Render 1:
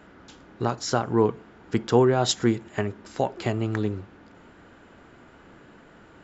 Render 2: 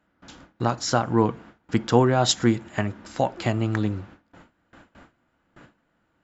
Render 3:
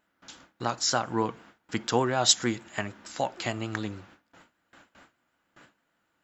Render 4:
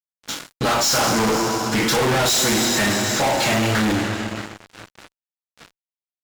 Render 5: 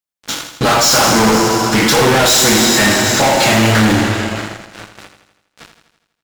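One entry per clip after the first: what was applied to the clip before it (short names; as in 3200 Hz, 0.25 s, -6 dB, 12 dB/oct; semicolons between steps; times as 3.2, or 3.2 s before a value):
bell 410 Hz -11.5 dB 0.22 oct; gate with hold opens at -40 dBFS; gain +3 dB
tilt +2.5 dB/oct; vibrato 6.6 Hz 39 cents; gain -4 dB
two-slope reverb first 0.4 s, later 2.9 s, from -15 dB, DRR -9 dB; fuzz box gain 32 dB, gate -41 dBFS; gain -4 dB
feedback echo 82 ms, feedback 57%, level -9 dB; gain +7 dB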